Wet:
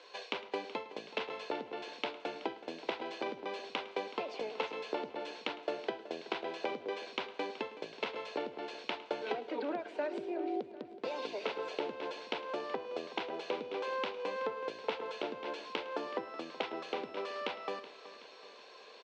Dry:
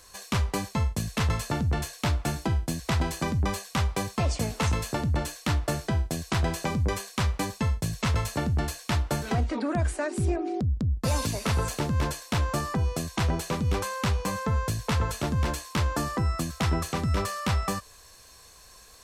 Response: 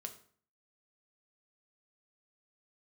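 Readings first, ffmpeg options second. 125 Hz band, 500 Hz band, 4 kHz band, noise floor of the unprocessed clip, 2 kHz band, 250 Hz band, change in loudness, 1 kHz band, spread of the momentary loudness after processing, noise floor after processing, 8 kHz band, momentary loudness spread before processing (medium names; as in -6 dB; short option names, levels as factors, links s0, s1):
-38.0 dB, -3.5 dB, -7.5 dB, -52 dBFS, -8.0 dB, -13.5 dB, -11.0 dB, -7.5 dB, 5 LU, -54 dBFS, under -25 dB, 2 LU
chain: -filter_complex "[0:a]acompressor=threshold=0.02:ratio=6,highpass=f=360:w=0.5412,highpass=f=360:w=1.3066,equalizer=f=450:t=q:w=4:g=4,equalizer=f=680:t=q:w=4:g=-3,equalizer=f=1200:t=q:w=4:g=-10,equalizer=f=1800:t=q:w=4:g=-8,lowpass=f=3500:w=0.5412,lowpass=f=3500:w=1.3066,aecho=1:1:375|750|1125|1500|1875:0.158|0.0903|0.0515|0.0294|0.0167,asplit=2[s0][s1];[1:a]atrim=start_sample=2205,adelay=107[s2];[s1][s2]afir=irnorm=-1:irlink=0,volume=0.2[s3];[s0][s3]amix=inputs=2:normalize=0,volume=1.78"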